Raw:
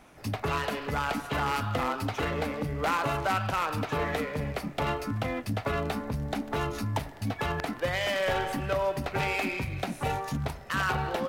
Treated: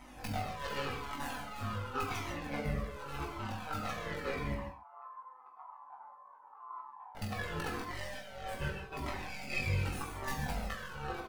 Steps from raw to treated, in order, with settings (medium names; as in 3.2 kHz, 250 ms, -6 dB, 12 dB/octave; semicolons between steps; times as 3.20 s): tracing distortion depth 0.18 ms; comb 3.9 ms, depth 44%; compressor with a negative ratio -34 dBFS, ratio -0.5; AM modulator 140 Hz, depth 40%; 4.54–7.15 s: Butterworth band-pass 990 Hz, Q 3.7; reverse bouncing-ball echo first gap 20 ms, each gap 1.15×, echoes 5; gated-style reverb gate 180 ms flat, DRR 3 dB; Shepard-style flanger falling 0.88 Hz